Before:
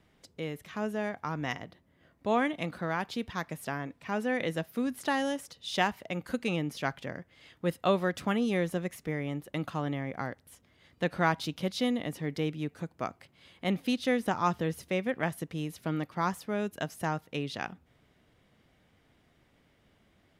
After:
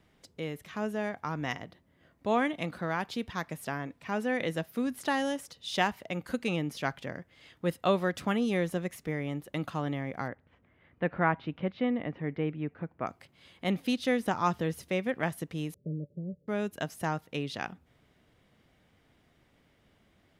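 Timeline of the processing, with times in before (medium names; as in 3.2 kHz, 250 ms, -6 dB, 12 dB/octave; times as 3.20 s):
10.28–13.07 s: low-pass 2.4 kHz 24 dB/octave
15.74–16.48 s: rippled Chebyshev low-pass 600 Hz, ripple 9 dB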